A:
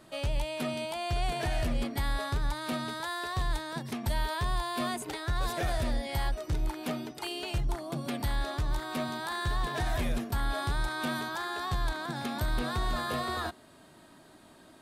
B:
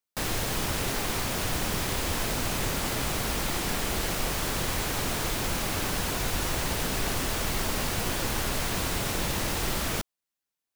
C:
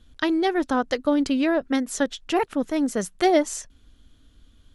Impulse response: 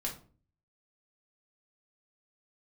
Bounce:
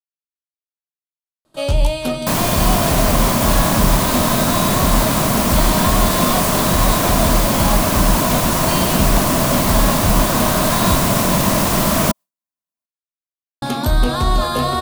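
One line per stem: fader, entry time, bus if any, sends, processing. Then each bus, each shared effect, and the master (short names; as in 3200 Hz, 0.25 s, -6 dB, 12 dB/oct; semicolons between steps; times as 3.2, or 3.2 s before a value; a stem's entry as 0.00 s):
+1.0 dB, 1.45 s, muted 10.96–13.62, send -3.5 dB, bell 1900 Hz -9.5 dB 0.66 oct; notches 60/120/180/240/300/360 Hz
-2.0 dB, 2.10 s, no send, high shelf 5700 Hz +9 dB; small resonant body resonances 200/630/1000 Hz, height 14 dB, ringing for 20 ms
off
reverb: on, RT60 0.40 s, pre-delay 4 ms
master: gate with hold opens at -42 dBFS; AGC gain up to 10 dB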